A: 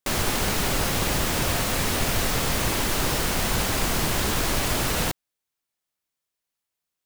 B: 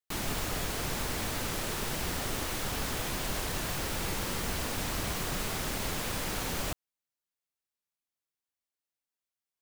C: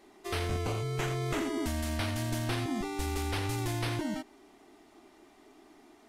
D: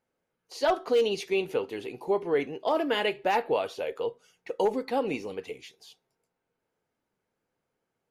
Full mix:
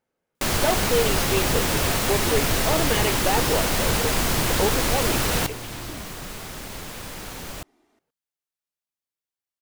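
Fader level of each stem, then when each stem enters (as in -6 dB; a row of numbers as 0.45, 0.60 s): +1.5, -2.0, -8.0, +1.0 dB; 0.35, 0.90, 1.90, 0.00 s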